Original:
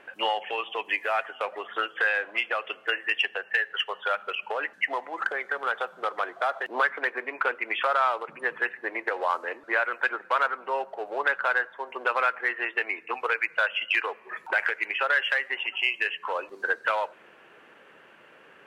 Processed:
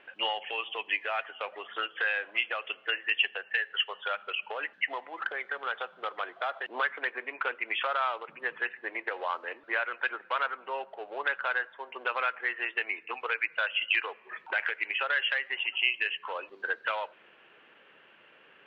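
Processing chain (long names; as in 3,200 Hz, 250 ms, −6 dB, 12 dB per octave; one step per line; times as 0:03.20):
low-pass with resonance 3,200 Hz, resonance Q 2.3
level −7 dB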